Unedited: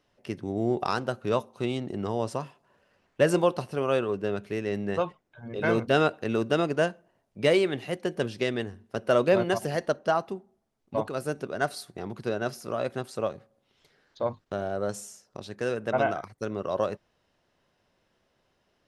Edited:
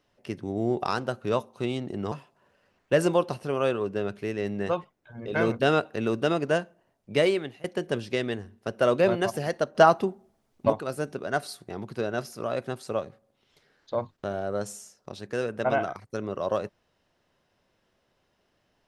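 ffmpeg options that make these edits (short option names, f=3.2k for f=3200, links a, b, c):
-filter_complex "[0:a]asplit=5[a][b][c][d][e];[a]atrim=end=2.122[f];[b]atrim=start=2.398:end=7.92,asetpts=PTS-STARTPTS,afade=t=out:st=5.002:d=0.52:c=qsin:silence=0.0749894[g];[c]atrim=start=7.92:end=10.032,asetpts=PTS-STARTPTS,afade=t=in:d=0.004:c=hsin:silence=0.0749894[h];[d]atrim=start=10.028:end=10.982,asetpts=PTS-STARTPTS,volume=8dB[i];[e]atrim=start=10.978[j];[g][h]concat=n=2:v=0:a=1[k];[f][k]acrossfade=d=0.004:c1=hsin:c2=hsin[l];[l][i]acrossfade=d=0.004:c1=hsin:c2=hsin[m];[m][j]acrossfade=d=0.004:c1=hsin:c2=hsin"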